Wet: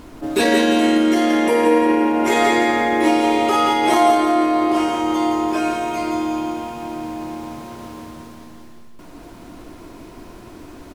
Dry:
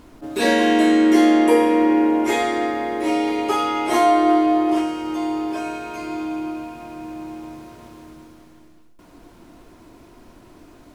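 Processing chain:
brickwall limiter −14 dBFS, peak gain reduction 9.5 dB
on a send: repeating echo 171 ms, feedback 45%, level −5.5 dB
on the sum: level +6.5 dB

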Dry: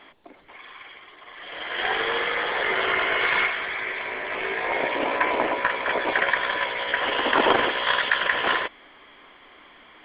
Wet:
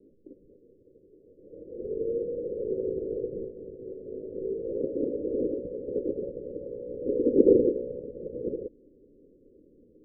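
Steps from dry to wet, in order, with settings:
Butterworth low-pass 520 Hz 96 dB per octave
0:07.06–0:07.88: parametric band 340 Hz +5.5 dB 1.8 octaves
level +2 dB

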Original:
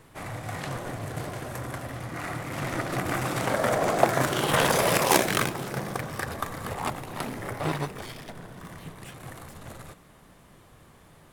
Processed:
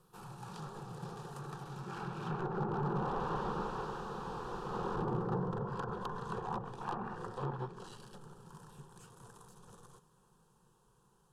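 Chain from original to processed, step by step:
source passing by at 0:04.21, 42 m/s, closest 16 metres
gain on a spectral selection 0:06.81–0:07.16, 590–2,900 Hz +8 dB
wrap-around overflow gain 33 dB
treble cut that deepens with the level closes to 1,000 Hz, closed at −40 dBFS
phaser with its sweep stopped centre 420 Hz, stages 8
level +11.5 dB

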